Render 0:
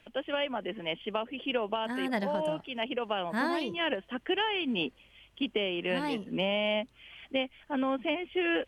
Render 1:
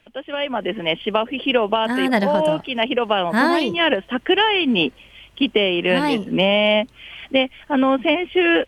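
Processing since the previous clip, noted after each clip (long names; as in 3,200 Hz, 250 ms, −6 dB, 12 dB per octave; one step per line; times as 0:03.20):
automatic gain control gain up to 11 dB
level +2 dB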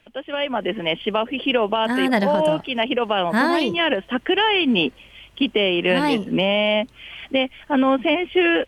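brickwall limiter −9 dBFS, peak gain reduction 3.5 dB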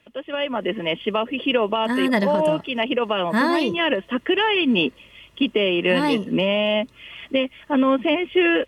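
notch comb filter 770 Hz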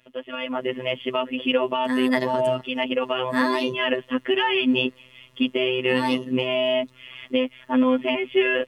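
phases set to zero 128 Hz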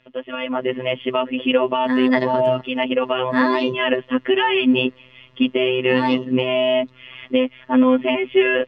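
high-frequency loss of the air 190 metres
level +5 dB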